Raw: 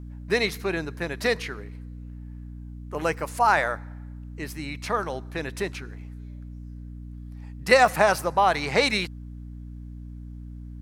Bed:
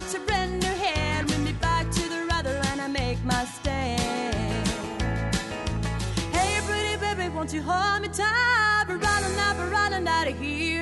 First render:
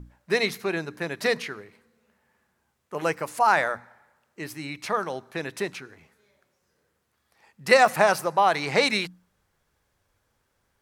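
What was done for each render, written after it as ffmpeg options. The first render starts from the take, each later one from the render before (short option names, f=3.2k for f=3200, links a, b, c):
-af "bandreject=f=60:t=h:w=6,bandreject=f=120:t=h:w=6,bandreject=f=180:t=h:w=6,bandreject=f=240:t=h:w=6,bandreject=f=300:t=h:w=6"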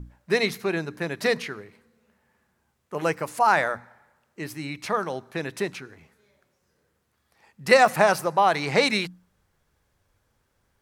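-af "lowshelf=f=290:g=4.5"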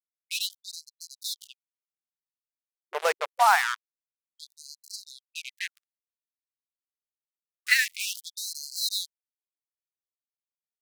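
-af "acrusher=bits=3:mix=0:aa=0.5,afftfilt=real='re*gte(b*sr/1024,350*pow(4100/350,0.5+0.5*sin(2*PI*0.26*pts/sr)))':imag='im*gte(b*sr/1024,350*pow(4100/350,0.5+0.5*sin(2*PI*0.26*pts/sr)))':win_size=1024:overlap=0.75"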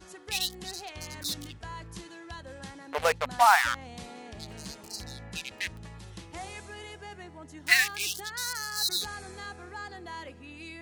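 -filter_complex "[1:a]volume=-17dB[a];[0:a][a]amix=inputs=2:normalize=0"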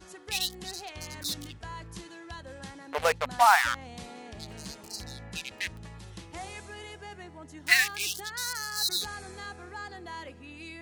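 -af anull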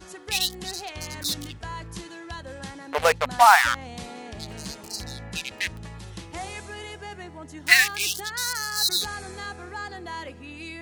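-af "volume=5.5dB"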